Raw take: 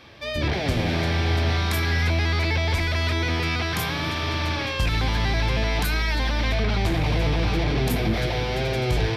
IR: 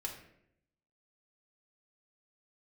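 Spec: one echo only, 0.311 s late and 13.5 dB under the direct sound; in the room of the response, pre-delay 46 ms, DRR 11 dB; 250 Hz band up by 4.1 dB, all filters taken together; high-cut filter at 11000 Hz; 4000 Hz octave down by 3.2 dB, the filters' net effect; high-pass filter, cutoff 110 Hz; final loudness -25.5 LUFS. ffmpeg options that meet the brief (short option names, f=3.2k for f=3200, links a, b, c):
-filter_complex "[0:a]highpass=110,lowpass=11k,equalizer=f=250:t=o:g=6,equalizer=f=4k:t=o:g=-4,aecho=1:1:311:0.211,asplit=2[a][b];[1:a]atrim=start_sample=2205,adelay=46[c];[b][c]afir=irnorm=-1:irlink=0,volume=-10.5dB[d];[a][d]amix=inputs=2:normalize=0,volume=-1.5dB"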